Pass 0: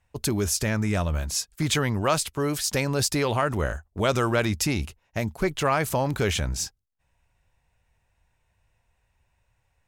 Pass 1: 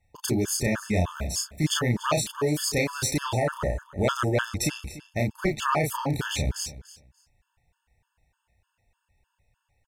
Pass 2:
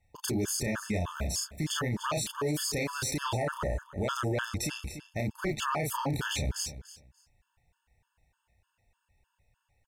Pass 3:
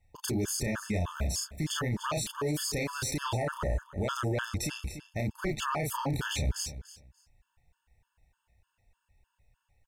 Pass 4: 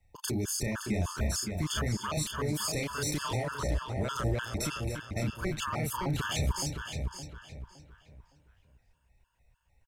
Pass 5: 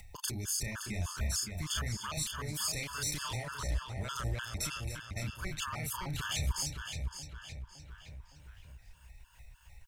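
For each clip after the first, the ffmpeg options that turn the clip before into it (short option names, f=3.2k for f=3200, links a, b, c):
-filter_complex "[0:a]asplit=2[a][b];[b]adelay=33,volume=-3dB[c];[a][c]amix=inputs=2:normalize=0,aecho=1:1:291|582:0.141|0.0254,afftfilt=real='re*gt(sin(2*PI*3.3*pts/sr)*(1-2*mod(floor(b*sr/1024/890),2)),0)':imag='im*gt(sin(2*PI*3.3*pts/sr)*(1-2*mod(floor(b*sr/1024/890),2)),0)':win_size=1024:overlap=0.75"
-af "alimiter=limit=-21dB:level=0:latency=1:release=26,volume=-1.5dB"
-af "lowshelf=f=64:g=8,volume=-1dB"
-filter_complex "[0:a]acrossover=split=190|3000[a][b][c];[b]acompressor=threshold=-32dB:ratio=6[d];[a][d][c]amix=inputs=3:normalize=0,asplit=2[e][f];[f]adelay=565,lowpass=f=3.7k:p=1,volume=-5dB,asplit=2[g][h];[h]adelay=565,lowpass=f=3.7k:p=1,volume=0.33,asplit=2[i][j];[j]adelay=565,lowpass=f=3.7k:p=1,volume=0.33,asplit=2[k][l];[l]adelay=565,lowpass=f=3.7k:p=1,volume=0.33[m];[g][i][k][m]amix=inputs=4:normalize=0[n];[e][n]amix=inputs=2:normalize=0"
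-af "equalizer=f=360:w=0.44:g=-13,acompressor=mode=upward:threshold=-38dB:ratio=2.5"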